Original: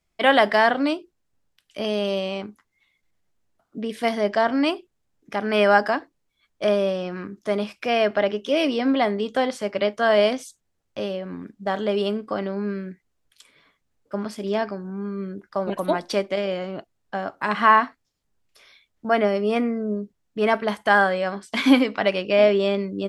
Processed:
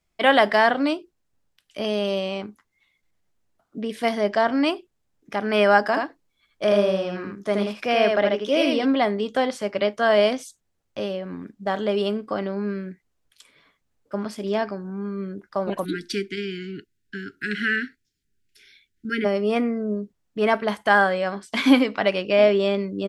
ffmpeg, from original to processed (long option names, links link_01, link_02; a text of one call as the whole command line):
ffmpeg -i in.wav -filter_complex "[0:a]asplit=3[link_01][link_02][link_03];[link_01]afade=type=out:start_time=5.9:duration=0.02[link_04];[link_02]aecho=1:1:79:0.668,afade=type=in:start_time=5.9:duration=0.02,afade=type=out:start_time=8.84:duration=0.02[link_05];[link_03]afade=type=in:start_time=8.84:duration=0.02[link_06];[link_04][link_05][link_06]amix=inputs=3:normalize=0,asplit=3[link_07][link_08][link_09];[link_07]afade=type=out:start_time=15.84:duration=0.02[link_10];[link_08]asuperstop=centerf=780:order=20:qfactor=0.79,afade=type=in:start_time=15.84:duration=0.02,afade=type=out:start_time=19.24:duration=0.02[link_11];[link_09]afade=type=in:start_time=19.24:duration=0.02[link_12];[link_10][link_11][link_12]amix=inputs=3:normalize=0" out.wav